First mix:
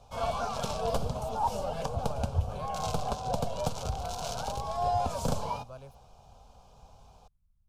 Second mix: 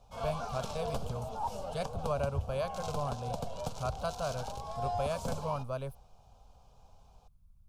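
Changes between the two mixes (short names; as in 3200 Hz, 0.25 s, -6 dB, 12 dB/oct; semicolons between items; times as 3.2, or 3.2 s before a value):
speech +9.5 dB; background -6.5 dB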